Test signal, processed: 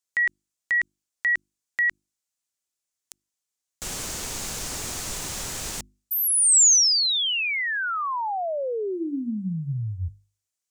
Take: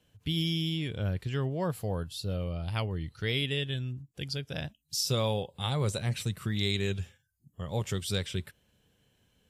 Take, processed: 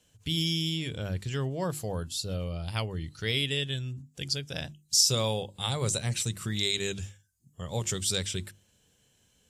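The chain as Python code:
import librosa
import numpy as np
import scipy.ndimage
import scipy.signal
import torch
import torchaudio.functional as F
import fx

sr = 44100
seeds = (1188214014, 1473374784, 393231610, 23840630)

y = fx.peak_eq(x, sr, hz=7100.0, db=12.5, octaves=1.2)
y = fx.hum_notches(y, sr, base_hz=50, count=7)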